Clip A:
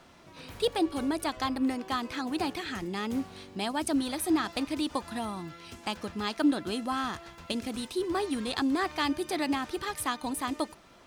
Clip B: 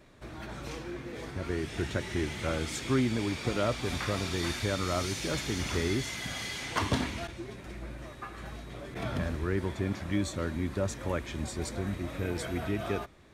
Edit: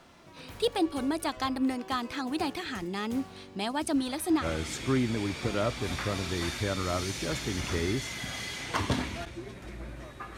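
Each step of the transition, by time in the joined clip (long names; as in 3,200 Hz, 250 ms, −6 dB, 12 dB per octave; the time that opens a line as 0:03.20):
clip A
0:03.32–0:04.46: high-shelf EQ 9,000 Hz −4.5 dB
0:04.42: continue with clip B from 0:02.44, crossfade 0.08 s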